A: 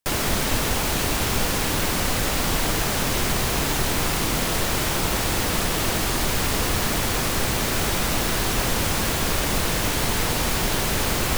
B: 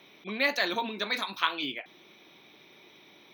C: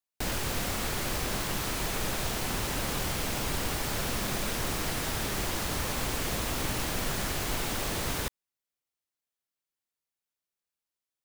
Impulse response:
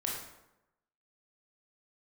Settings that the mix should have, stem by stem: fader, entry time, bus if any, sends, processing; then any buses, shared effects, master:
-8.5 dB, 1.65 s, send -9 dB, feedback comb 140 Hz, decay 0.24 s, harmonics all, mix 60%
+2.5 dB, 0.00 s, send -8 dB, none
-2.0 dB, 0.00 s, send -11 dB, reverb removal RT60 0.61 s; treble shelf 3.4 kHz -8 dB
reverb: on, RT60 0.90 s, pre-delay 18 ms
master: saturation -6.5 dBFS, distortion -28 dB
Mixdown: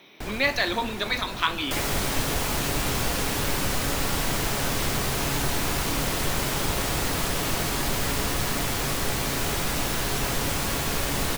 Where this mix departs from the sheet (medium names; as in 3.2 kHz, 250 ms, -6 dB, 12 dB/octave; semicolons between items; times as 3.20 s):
stem A -8.5 dB -> +1.0 dB; reverb return -9.0 dB